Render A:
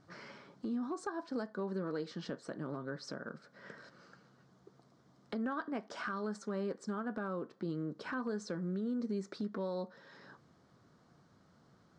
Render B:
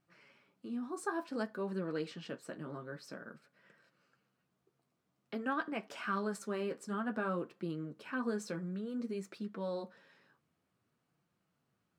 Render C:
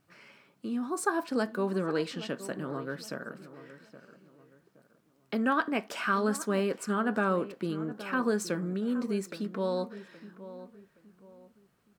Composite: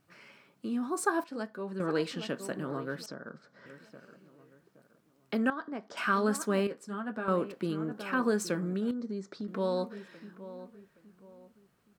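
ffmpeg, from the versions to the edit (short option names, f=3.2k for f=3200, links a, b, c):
-filter_complex "[1:a]asplit=2[a][b];[0:a]asplit=3[c][d][e];[2:a]asplit=6[f][g][h][i][j][k];[f]atrim=end=1.242[l];[a]atrim=start=1.238:end=1.802[m];[g]atrim=start=1.798:end=3.062[n];[c]atrim=start=3.058:end=3.662[o];[h]atrim=start=3.658:end=5.502[p];[d]atrim=start=5.498:end=5.972[q];[i]atrim=start=5.968:end=6.672[r];[b]atrim=start=6.668:end=7.282[s];[j]atrim=start=7.278:end=8.912[t];[e]atrim=start=8.908:end=9.482[u];[k]atrim=start=9.478[v];[l][m]acrossfade=d=0.004:c1=hsin:c2=hsin[w];[w][n]acrossfade=d=0.004:c1=hsin:c2=hsin[x];[x][o]acrossfade=d=0.004:c1=hsin:c2=hsin[y];[y][p]acrossfade=d=0.004:c1=hsin:c2=hsin[z];[z][q]acrossfade=d=0.004:c1=hsin:c2=hsin[aa];[aa][r]acrossfade=d=0.004:c1=hsin:c2=hsin[ab];[ab][s]acrossfade=d=0.004:c1=hsin:c2=hsin[ac];[ac][t]acrossfade=d=0.004:c1=hsin:c2=hsin[ad];[ad][u]acrossfade=d=0.004:c1=hsin:c2=hsin[ae];[ae][v]acrossfade=d=0.004:c1=hsin:c2=hsin"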